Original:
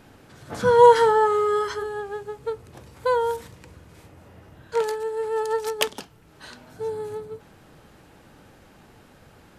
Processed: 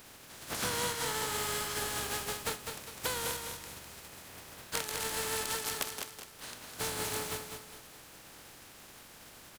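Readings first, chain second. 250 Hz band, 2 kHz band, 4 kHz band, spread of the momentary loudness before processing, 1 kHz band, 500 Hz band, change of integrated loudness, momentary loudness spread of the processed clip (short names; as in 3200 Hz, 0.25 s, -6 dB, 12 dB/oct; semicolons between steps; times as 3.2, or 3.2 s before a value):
-5.0 dB, -5.0 dB, -0.5 dB, 20 LU, -16.5 dB, -20.5 dB, -13.0 dB, 18 LU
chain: spectral contrast lowered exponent 0.32; compressor 16:1, threshold -29 dBFS, peak gain reduction 22 dB; on a send: feedback echo 0.204 s, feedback 36%, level -6 dB; on the sum: gain -2.5 dB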